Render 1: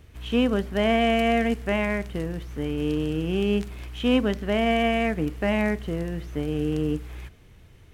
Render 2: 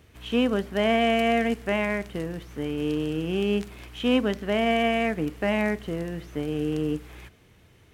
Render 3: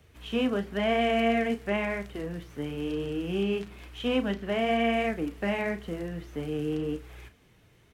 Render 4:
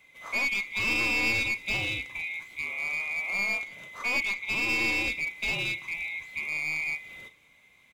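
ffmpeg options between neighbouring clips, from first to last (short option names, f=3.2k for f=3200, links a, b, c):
-af "highpass=f=150:p=1"
-filter_complex "[0:a]acrossover=split=300|670|4400[a][b][c][d];[d]alimiter=level_in=13dB:limit=-24dB:level=0:latency=1:release=219,volume=-13dB[e];[a][b][c][e]amix=inputs=4:normalize=0,flanger=delay=1.3:depth=6.2:regen=-42:speed=0.98:shape=triangular,asplit=2[f][g];[g]adelay=35,volume=-11dB[h];[f][h]amix=inputs=2:normalize=0"
-af "afftfilt=real='real(if(lt(b,920),b+92*(1-2*mod(floor(b/92),2)),b),0)':imag='imag(if(lt(b,920),b+92*(1-2*mod(floor(b/92),2)),b),0)':win_size=2048:overlap=0.75,aeval=exprs='clip(val(0),-1,0.0422)':c=same,aecho=1:1:185:0.075"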